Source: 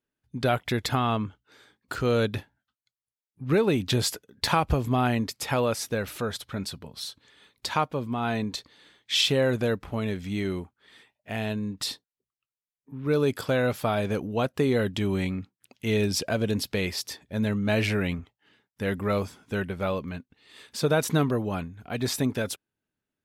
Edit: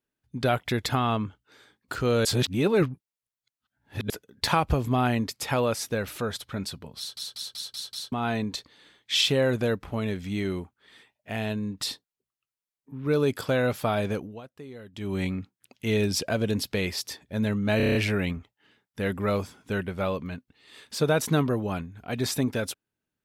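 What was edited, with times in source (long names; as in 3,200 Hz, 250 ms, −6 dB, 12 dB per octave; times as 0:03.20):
0:02.25–0:04.10: reverse
0:06.98: stutter in place 0.19 s, 6 plays
0:14.08–0:15.24: duck −19 dB, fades 0.33 s
0:17.77: stutter 0.03 s, 7 plays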